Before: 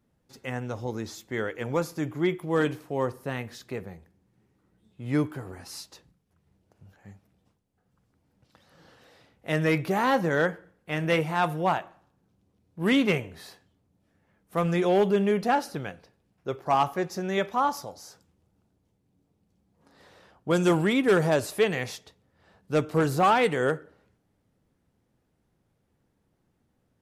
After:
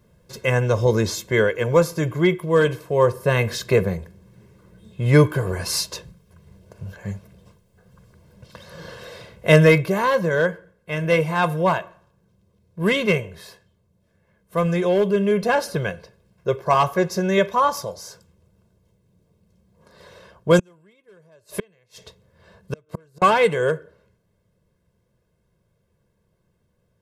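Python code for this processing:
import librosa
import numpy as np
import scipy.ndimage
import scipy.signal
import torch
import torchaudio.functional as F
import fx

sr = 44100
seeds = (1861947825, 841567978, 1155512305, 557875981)

y = fx.gate_flip(x, sr, shuts_db=-21.0, range_db=-39, at=(20.59, 23.22))
y = fx.peak_eq(y, sr, hz=210.0, db=6.5, octaves=0.81)
y = y + 0.84 * np.pad(y, (int(1.9 * sr / 1000.0), 0))[:len(y)]
y = fx.rider(y, sr, range_db=10, speed_s=0.5)
y = y * librosa.db_to_amplitude(4.5)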